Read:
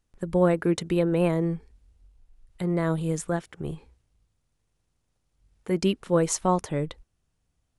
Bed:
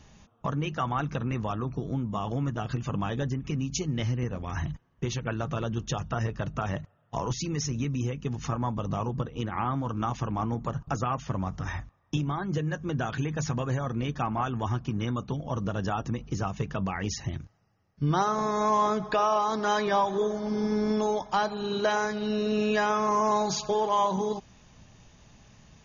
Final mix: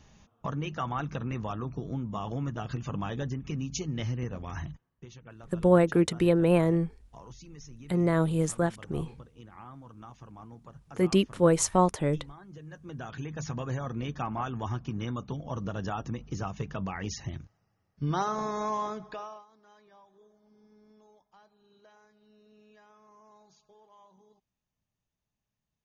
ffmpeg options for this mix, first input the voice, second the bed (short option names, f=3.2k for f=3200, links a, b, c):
-filter_complex "[0:a]adelay=5300,volume=0.5dB[a];[1:a]volume=10.5dB,afade=t=out:st=4.45:d=0.61:silence=0.188365,afade=t=in:st=12.58:d=1.16:silence=0.199526,afade=t=out:st=18.39:d=1.07:silence=0.0334965[b];[a][b]amix=inputs=2:normalize=0"